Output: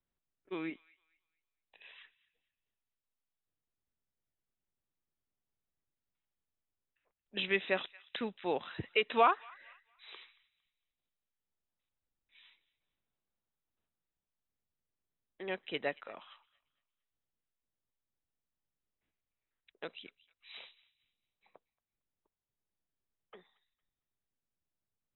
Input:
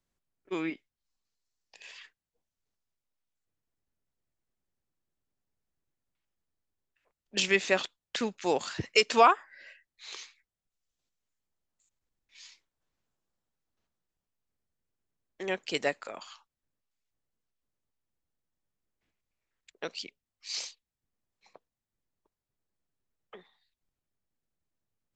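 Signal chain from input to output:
linear-phase brick-wall low-pass 4,000 Hz
delay with a high-pass on its return 228 ms, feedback 30%, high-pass 1,500 Hz, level −20 dB
level −6 dB

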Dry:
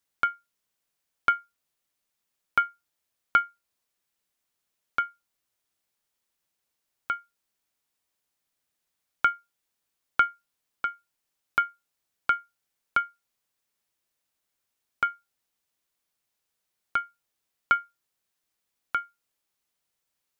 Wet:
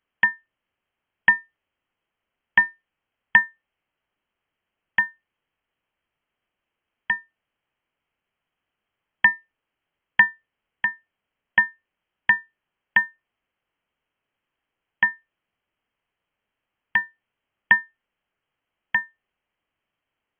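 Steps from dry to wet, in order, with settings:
voice inversion scrambler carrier 3,200 Hz
level +6 dB

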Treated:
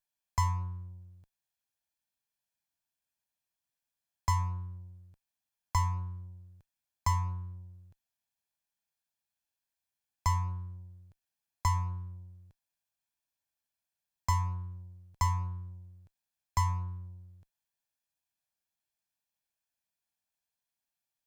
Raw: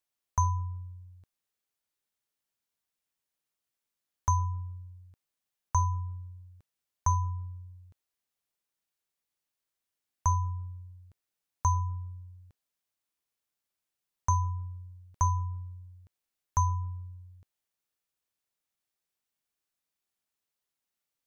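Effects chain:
lower of the sound and its delayed copy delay 1.2 ms
level −1.5 dB

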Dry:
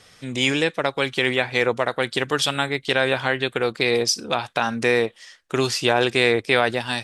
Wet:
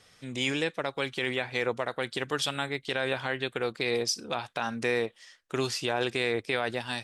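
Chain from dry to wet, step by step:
brickwall limiter −7.5 dBFS, peak gain reduction 4 dB
level −8 dB

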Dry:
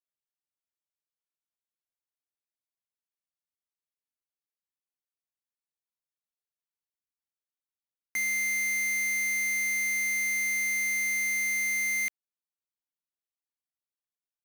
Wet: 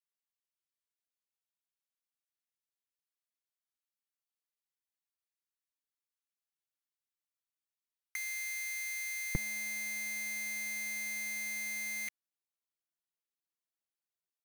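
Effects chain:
high-pass filter 1,100 Hz 12 dB per octave, from 0:09.35 140 Hz
comb filter 6 ms, depth 55%
level −4 dB

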